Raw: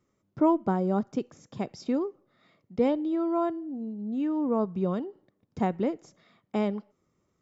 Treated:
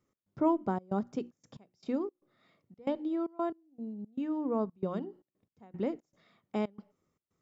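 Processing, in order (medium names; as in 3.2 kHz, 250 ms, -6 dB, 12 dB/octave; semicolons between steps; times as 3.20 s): hum notches 60/120/180/240/300/360 Hz; trance gate "x.xxxx.xxx.x..x" 115 bpm -24 dB; trim -4.5 dB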